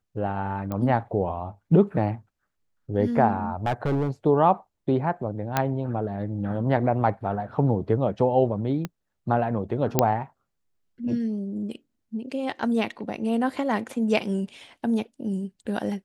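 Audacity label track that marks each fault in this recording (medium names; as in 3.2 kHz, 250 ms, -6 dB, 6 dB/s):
0.720000	0.720000	pop -18 dBFS
3.650000	4.110000	clipped -20 dBFS
5.570000	5.570000	pop -7 dBFS
8.850000	8.850000	pop -16 dBFS
9.990000	9.990000	pop -3 dBFS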